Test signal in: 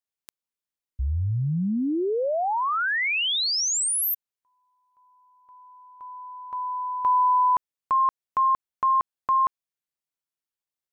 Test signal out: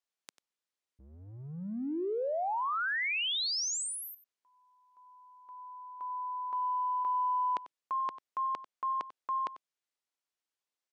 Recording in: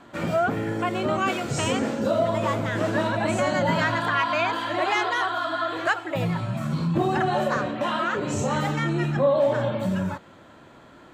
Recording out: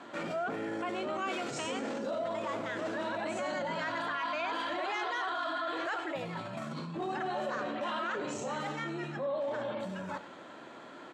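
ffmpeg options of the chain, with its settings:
ffmpeg -i in.wav -af "areverse,acompressor=threshold=-33dB:ratio=6:attack=1.1:release=42:knee=6:detection=peak,areverse,highpass=260,lowpass=7900,aecho=1:1:94:0.168,volume=1.5dB" out.wav

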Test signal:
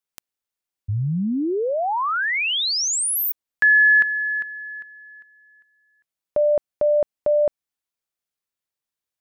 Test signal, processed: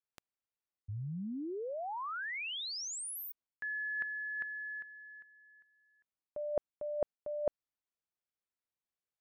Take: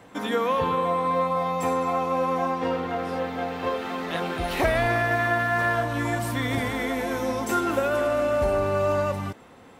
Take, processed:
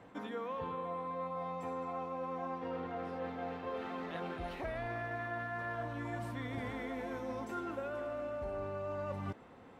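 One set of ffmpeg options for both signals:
ffmpeg -i in.wav -af "lowpass=frequency=2100:poles=1,areverse,acompressor=threshold=-35dB:ratio=5:attack=86:release=296:knee=1:detection=peak,areverse,volume=-6dB" out.wav

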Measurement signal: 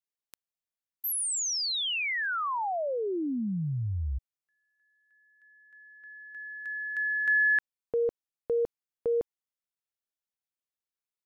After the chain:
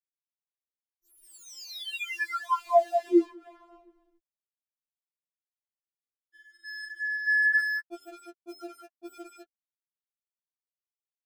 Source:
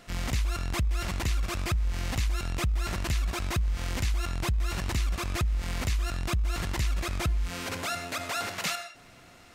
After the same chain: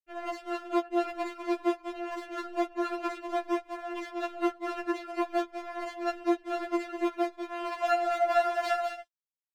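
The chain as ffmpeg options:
ffmpeg -i in.wav -af "afftfilt=real='re*gte(hypot(re,im),0.0178)':imag='im*gte(hypot(re,im),0.0178)':win_size=1024:overlap=0.75,aeval=exprs='val(0)+0.00251*(sin(2*PI*60*n/s)+sin(2*PI*2*60*n/s)/2+sin(2*PI*3*60*n/s)/3+sin(2*PI*4*60*n/s)/4+sin(2*PI*5*60*n/s)/5)':channel_layout=same,lowpass=frequency=1300:poles=1,equalizer=frequency=520:width_type=o:width=0.9:gain=13,aecho=1:1:198:0.447,flanger=delay=3.2:depth=7.8:regen=-25:speed=1:shape=sinusoidal,highpass=frequency=410:poles=1,aeval=exprs='sgn(val(0))*max(abs(val(0))-0.00335,0)':channel_layout=same,afftfilt=real='re*4*eq(mod(b,16),0)':imag='im*4*eq(mod(b,16),0)':win_size=2048:overlap=0.75,volume=8dB" out.wav

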